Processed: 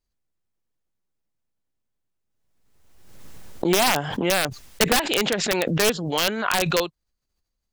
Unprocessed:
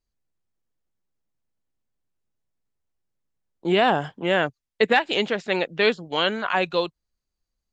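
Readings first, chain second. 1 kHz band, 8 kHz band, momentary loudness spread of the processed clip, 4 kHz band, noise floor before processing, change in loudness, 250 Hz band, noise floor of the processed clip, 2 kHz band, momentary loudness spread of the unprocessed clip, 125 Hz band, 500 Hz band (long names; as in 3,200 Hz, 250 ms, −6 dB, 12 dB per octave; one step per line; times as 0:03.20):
−1.0 dB, can't be measured, 5 LU, +3.0 dB, −84 dBFS, +1.0 dB, +2.0 dB, −79 dBFS, −0.5 dB, 7 LU, +5.5 dB, −1.0 dB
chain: wrap-around overflow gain 11 dB
background raised ahead of every attack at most 40 dB per second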